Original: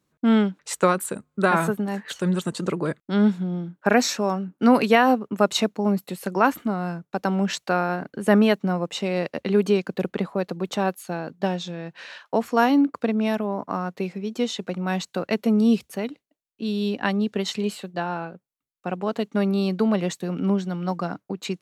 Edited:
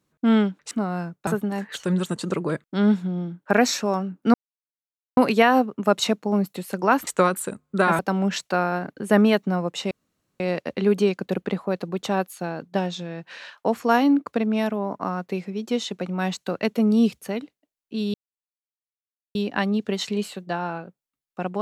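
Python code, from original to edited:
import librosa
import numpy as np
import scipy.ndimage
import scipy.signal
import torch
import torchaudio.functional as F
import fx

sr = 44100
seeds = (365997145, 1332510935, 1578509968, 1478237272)

y = fx.edit(x, sr, fx.swap(start_s=0.71, length_s=0.92, other_s=6.6, other_length_s=0.56),
    fx.insert_silence(at_s=4.7, length_s=0.83),
    fx.insert_room_tone(at_s=9.08, length_s=0.49),
    fx.insert_silence(at_s=16.82, length_s=1.21), tone=tone)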